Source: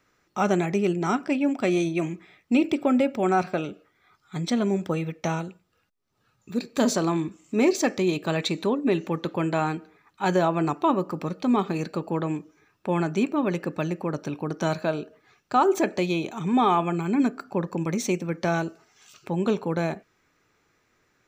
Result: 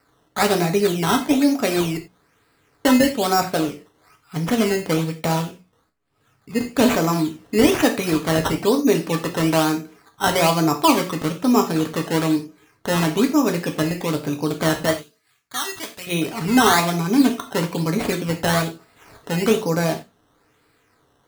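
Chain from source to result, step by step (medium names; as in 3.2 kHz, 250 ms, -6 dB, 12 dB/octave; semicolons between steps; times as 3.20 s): 1.97–2.85 s: room tone; hum notches 60/120/180/240 Hz; decimation with a swept rate 13×, swing 100% 1.1 Hz; 14.93–16.07 s: amplifier tone stack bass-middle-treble 5-5-5; gated-style reverb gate 120 ms falling, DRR 3.5 dB; trim +4.5 dB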